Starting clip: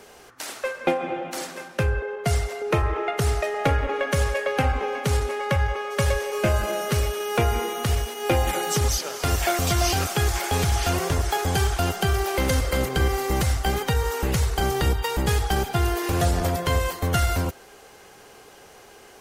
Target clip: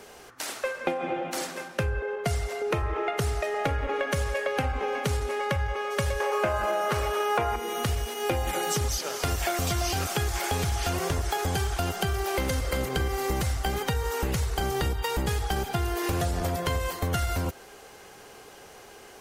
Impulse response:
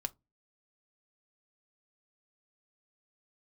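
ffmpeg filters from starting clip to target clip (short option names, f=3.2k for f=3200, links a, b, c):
-filter_complex "[0:a]asettb=1/sr,asplit=3[a][b][c];[a]atrim=end=6.204[d];[b]atrim=start=6.2:end=7.56,asetpts=PTS-STARTPTS,afade=t=in:d=0.004:c=qsin,afade=t=out:st=1.356:d=0.004:c=qsin,equalizer=f=1k:t=o:w=2.3:g=13.5[e];[c]atrim=start=7.556[f];[d][e]acrossfade=d=0.004:c1=hsin:c2=qsin[g];[g][f]acrossfade=d=0.004:c1=qsin:c2=hsin,acompressor=threshold=-24dB:ratio=6"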